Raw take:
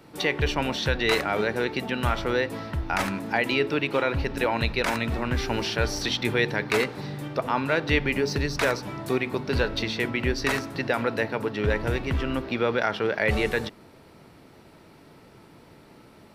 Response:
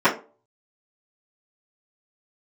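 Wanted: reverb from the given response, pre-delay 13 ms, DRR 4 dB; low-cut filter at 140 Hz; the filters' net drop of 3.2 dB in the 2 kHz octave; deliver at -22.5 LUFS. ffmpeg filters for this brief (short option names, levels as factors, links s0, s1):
-filter_complex "[0:a]highpass=140,equalizer=f=2000:t=o:g=-4,asplit=2[s0][s1];[1:a]atrim=start_sample=2205,adelay=13[s2];[s1][s2]afir=irnorm=-1:irlink=0,volume=0.0531[s3];[s0][s3]amix=inputs=2:normalize=0,volume=1.58"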